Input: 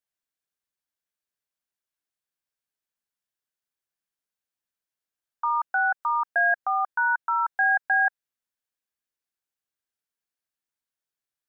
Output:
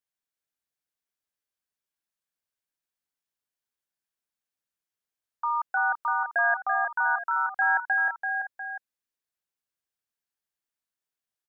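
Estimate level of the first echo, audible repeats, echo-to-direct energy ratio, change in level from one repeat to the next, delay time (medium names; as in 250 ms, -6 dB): -5.5 dB, 2, -4.5 dB, no regular repeats, 336 ms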